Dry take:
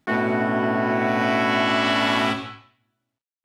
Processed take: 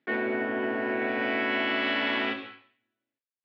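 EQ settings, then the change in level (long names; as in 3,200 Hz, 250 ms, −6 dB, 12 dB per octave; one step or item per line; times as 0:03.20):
band-pass filter 400–4,400 Hz
high-frequency loss of the air 290 metres
flat-topped bell 930 Hz −10 dB 1.3 octaves
0.0 dB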